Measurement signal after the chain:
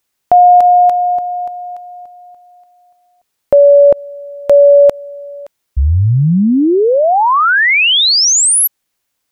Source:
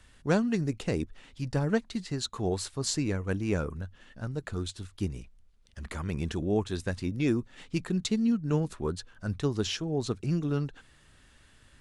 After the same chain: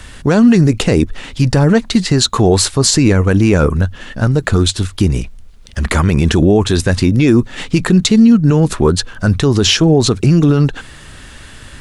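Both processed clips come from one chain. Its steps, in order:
boost into a limiter +24.5 dB
level −1 dB

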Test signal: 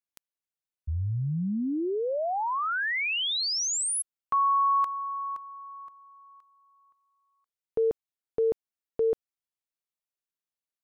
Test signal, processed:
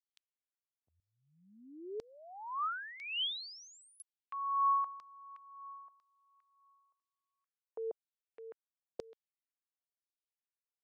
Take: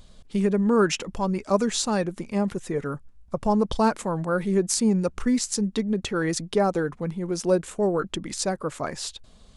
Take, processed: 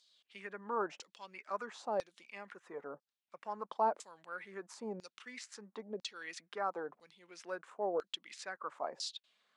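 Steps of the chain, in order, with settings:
Bessel high-pass filter 220 Hz, order 4
auto-filter band-pass saw down 1 Hz 550–5,100 Hz
level −4.5 dB

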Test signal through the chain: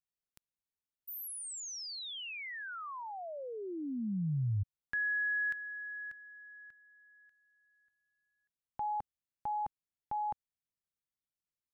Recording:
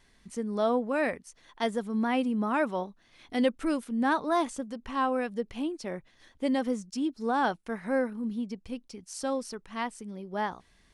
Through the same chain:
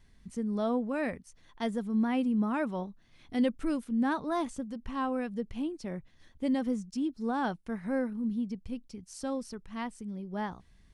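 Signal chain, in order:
bass and treble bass +12 dB, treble 0 dB
level −6 dB

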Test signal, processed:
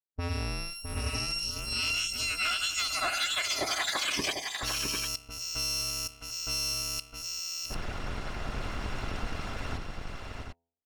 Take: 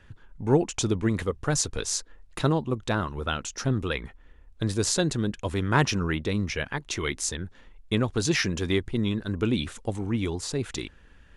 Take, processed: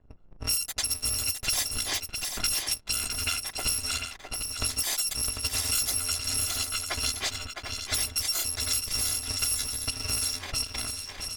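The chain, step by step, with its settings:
samples in bit-reversed order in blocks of 256 samples
hum removal 84.83 Hz, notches 12
low-pass that shuts in the quiet parts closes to 640 Hz, open at −21.5 dBFS
parametric band 5,900 Hz +7 dB 2.4 octaves
harmonic and percussive parts rebalanced percussive +5 dB
leveller curve on the samples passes 2
downward compressor 4 to 1, threshold −30 dBFS
on a send: multi-tap delay 660/747 ms −6.5/−7.5 dB

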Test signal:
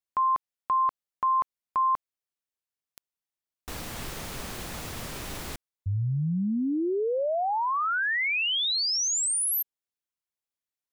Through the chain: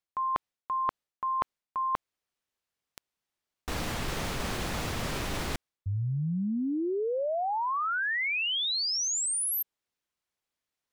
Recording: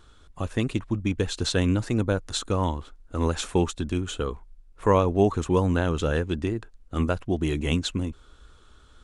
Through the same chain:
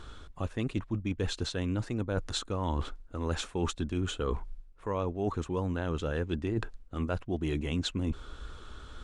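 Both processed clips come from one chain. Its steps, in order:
high-shelf EQ 7,900 Hz −11 dB
reversed playback
downward compressor 16 to 1, threshold −36 dBFS
reversed playback
level +8 dB

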